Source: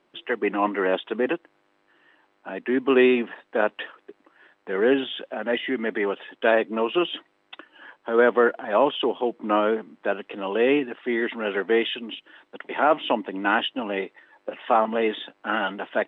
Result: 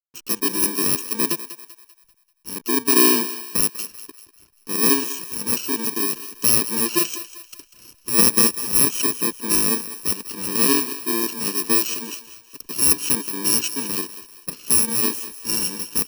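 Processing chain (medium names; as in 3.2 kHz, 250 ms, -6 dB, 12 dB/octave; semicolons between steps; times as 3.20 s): bit-reversed sample order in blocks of 64 samples; hysteresis with a dead band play -42.5 dBFS; thinning echo 195 ms, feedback 44%, high-pass 510 Hz, level -13 dB; trim +2.5 dB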